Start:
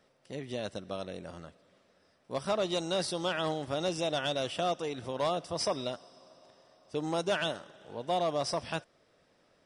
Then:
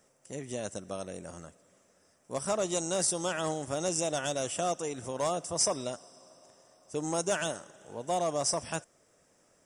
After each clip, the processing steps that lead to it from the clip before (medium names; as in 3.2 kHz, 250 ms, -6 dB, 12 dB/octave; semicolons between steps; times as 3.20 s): resonant high shelf 5.4 kHz +9.5 dB, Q 3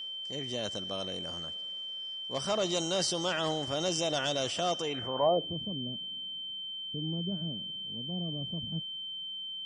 low-pass sweep 4.4 kHz -> 200 Hz, 4.81–5.60 s; transient shaper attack -2 dB, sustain +3 dB; whistle 3.1 kHz -37 dBFS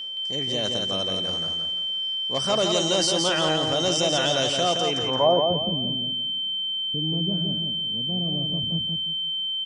feedback delay 170 ms, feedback 32%, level -4.5 dB; trim +6.5 dB